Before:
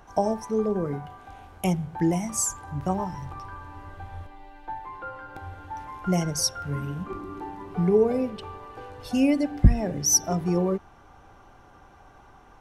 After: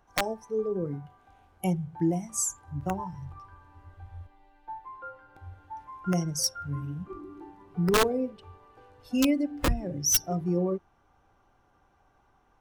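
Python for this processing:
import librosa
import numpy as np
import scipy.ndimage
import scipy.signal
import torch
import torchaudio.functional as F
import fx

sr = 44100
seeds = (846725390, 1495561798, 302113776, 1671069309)

y = (np.mod(10.0 ** (13.0 / 20.0) * x + 1.0, 2.0) - 1.0) / 10.0 ** (13.0 / 20.0)
y = fx.noise_reduce_blind(y, sr, reduce_db=11)
y = F.gain(torch.from_numpy(y), -2.5).numpy()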